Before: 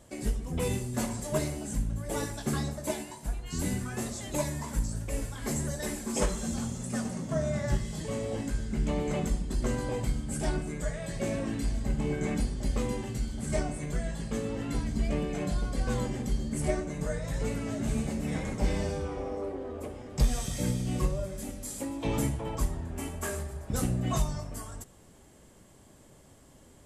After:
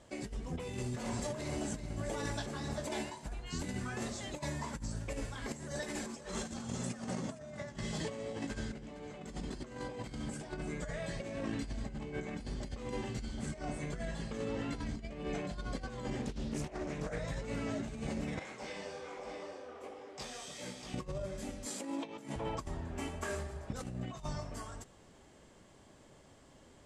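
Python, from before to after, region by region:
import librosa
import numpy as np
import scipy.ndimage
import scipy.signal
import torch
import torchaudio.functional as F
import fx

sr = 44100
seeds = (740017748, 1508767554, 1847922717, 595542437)

y = fx.chain(x, sr, fx.over_compress(threshold_db=-35.0, ratio=-1.0),
    fx.echo_single(ms=385, db=-9.5), at=(0.56, 3.1))
y = fx.chain(y, sr, fx.highpass(hz=100.0, slope=6),
    fx.over_compress(threshold_db=-37.0, ratio=-0.5),
    fx.echo_single(ms=462, db=-16.0), at=(5.52, 10.53))
y = fx.chain(y, sr, fx.hum_notches(base_hz=60, count=3),
    fx.doppler_dist(depth_ms=0.76), at=(16.22, 17.19))
y = fx.chain(y, sr, fx.highpass(hz=730.0, slope=6),
    fx.echo_single(ms=633, db=-7.5),
    fx.detune_double(cents=43), at=(18.39, 20.94))
y = fx.chain(y, sr, fx.highpass(hz=170.0, slope=24),
    fx.over_compress(threshold_db=-37.0, ratio=-0.5), at=(21.66, 22.36))
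y = scipy.signal.sosfilt(scipy.signal.butter(2, 5700.0, 'lowpass', fs=sr, output='sos'), y)
y = fx.low_shelf(y, sr, hz=300.0, db=-6.0)
y = fx.over_compress(y, sr, threshold_db=-36.0, ratio=-0.5)
y = F.gain(torch.from_numpy(y), -1.5).numpy()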